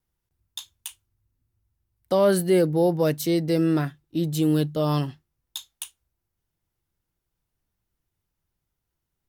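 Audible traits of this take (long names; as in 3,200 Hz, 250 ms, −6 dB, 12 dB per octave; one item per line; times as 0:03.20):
background noise floor −82 dBFS
spectral slope −6.5 dB per octave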